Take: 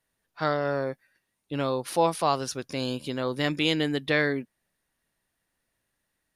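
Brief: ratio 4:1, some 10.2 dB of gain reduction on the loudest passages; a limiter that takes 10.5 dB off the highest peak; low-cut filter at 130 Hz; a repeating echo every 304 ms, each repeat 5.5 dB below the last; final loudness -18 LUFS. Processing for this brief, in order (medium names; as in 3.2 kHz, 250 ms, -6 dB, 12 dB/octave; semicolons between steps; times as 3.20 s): high-pass 130 Hz; compression 4:1, threshold -30 dBFS; peak limiter -27 dBFS; feedback delay 304 ms, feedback 53%, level -5.5 dB; trim +20 dB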